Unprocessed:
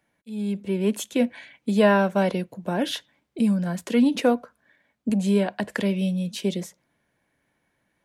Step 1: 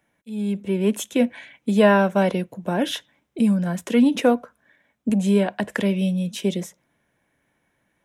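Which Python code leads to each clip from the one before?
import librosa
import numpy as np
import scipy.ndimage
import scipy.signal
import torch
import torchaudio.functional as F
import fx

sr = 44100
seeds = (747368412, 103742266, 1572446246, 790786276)

y = fx.peak_eq(x, sr, hz=4500.0, db=-9.5, octaves=0.2)
y = y * 10.0 ** (2.5 / 20.0)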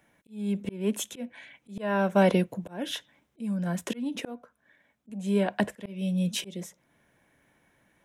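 y = fx.rider(x, sr, range_db=5, speed_s=2.0)
y = fx.auto_swell(y, sr, attack_ms=552.0)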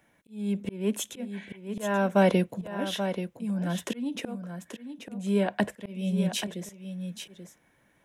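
y = x + 10.0 ** (-9.0 / 20.0) * np.pad(x, (int(833 * sr / 1000.0), 0))[:len(x)]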